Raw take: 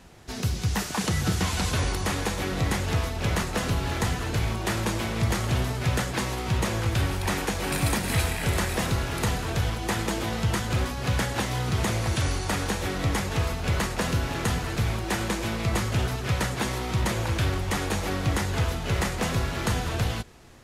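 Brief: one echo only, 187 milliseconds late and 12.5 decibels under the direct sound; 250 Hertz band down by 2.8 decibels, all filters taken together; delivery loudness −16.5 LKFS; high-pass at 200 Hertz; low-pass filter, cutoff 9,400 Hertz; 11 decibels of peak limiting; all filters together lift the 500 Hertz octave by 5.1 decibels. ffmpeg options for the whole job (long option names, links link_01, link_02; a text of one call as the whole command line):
ffmpeg -i in.wav -af "highpass=200,lowpass=9400,equalizer=frequency=250:width_type=o:gain=-3.5,equalizer=frequency=500:width_type=o:gain=7.5,alimiter=limit=-21.5dB:level=0:latency=1,aecho=1:1:187:0.237,volume=14.5dB" out.wav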